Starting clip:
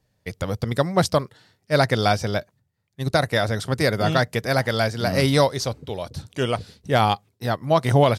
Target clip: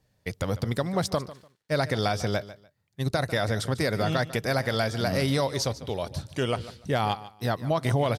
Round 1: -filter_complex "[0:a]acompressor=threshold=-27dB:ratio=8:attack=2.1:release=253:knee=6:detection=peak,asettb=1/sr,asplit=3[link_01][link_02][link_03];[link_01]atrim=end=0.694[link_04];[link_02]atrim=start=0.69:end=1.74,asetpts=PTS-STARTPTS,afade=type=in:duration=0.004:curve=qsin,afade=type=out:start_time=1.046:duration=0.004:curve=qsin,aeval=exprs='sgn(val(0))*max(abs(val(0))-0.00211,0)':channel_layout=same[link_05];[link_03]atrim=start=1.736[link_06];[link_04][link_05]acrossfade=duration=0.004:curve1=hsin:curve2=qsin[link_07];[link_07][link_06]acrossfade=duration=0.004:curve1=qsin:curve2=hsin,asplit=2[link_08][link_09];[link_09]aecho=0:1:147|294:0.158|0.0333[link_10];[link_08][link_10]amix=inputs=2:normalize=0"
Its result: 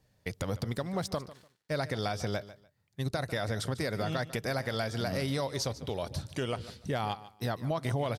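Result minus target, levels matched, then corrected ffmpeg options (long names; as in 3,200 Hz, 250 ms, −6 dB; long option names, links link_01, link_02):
downward compressor: peak gain reduction +7 dB
-filter_complex "[0:a]acompressor=threshold=-19dB:ratio=8:attack=2.1:release=253:knee=6:detection=peak,asettb=1/sr,asplit=3[link_01][link_02][link_03];[link_01]atrim=end=0.694[link_04];[link_02]atrim=start=0.69:end=1.74,asetpts=PTS-STARTPTS,afade=type=in:duration=0.004:curve=qsin,afade=type=out:start_time=1.046:duration=0.004:curve=qsin,aeval=exprs='sgn(val(0))*max(abs(val(0))-0.00211,0)':channel_layout=same[link_05];[link_03]atrim=start=1.736[link_06];[link_04][link_05]acrossfade=duration=0.004:curve1=hsin:curve2=qsin[link_07];[link_07][link_06]acrossfade=duration=0.004:curve1=qsin:curve2=hsin,asplit=2[link_08][link_09];[link_09]aecho=0:1:147|294:0.158|0.0333[link_10];[link_08][link_10]amix=inputs=2:normalize=0"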